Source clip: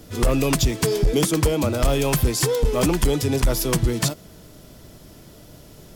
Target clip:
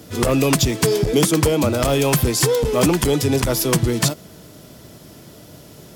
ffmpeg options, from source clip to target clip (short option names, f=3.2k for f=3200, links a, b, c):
-af "highpass=88,volume=4dB"